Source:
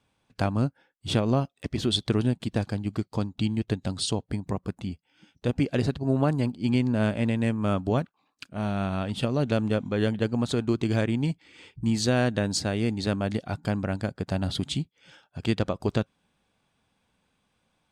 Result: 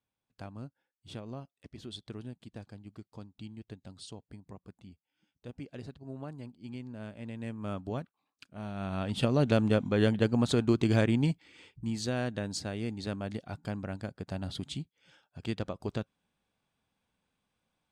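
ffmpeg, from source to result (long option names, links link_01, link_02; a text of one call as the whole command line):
ffmpeg -i in.wav -af "volume=-0.5dB,afade=type=in:start_time=7.15:duration=0.54:silence=0.421697,afade=type=in:start_time=8.74:duration=0.54:silence=0.298538,afade=type=out:start_time=11.2:duration=0.6:silence=0.375837" out.wav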